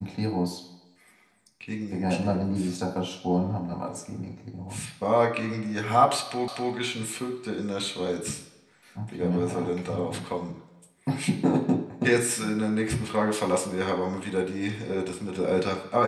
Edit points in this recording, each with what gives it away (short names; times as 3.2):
6.48 repeat of the last 0.25 s